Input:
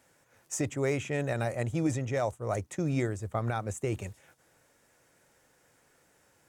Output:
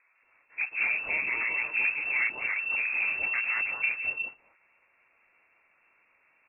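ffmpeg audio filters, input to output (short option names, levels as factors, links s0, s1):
-filter_complex "[0:a]equalizer=f=100:w=5.6:g=9.5,aresample=8000,acrusher=bits=3:mode=log:mix=0:aa=0.000001,aresample=44100,asplit=4[s0][s1][s2][s3];[s1]asetrate=55563,aresample=44100,atempo=0.793701,volume=0.562[s4];[s2]asetrate=58866,aresample=44100,atempo=0.749154,volume=0.447[s5];[s3]asetrate=66075,aresample=44100,atempo=0.66742,volume=0.178[s6];[s0][s4][s5][s6]amix=inputs=4:normalize=0,aeval=exprs='0.1*(abs(mod(val(0)/0.1+3,4)-2)-1)':c=same,acrossover=split=170|1800[s7][s8][s9];[s7]adelay=140[s10];[s9]adelay=220[s11];[s10][s8][s11]amix=inputs=3:normalize=0,lowpass=f=2400:t=q:w=0.5098,lowpass=f=2400:t=q:w=0.6013,lowpass=f=2400:t=q:w=0.9,lowpass=f=2400:t=q:w=2.563,afreqshift=-2800"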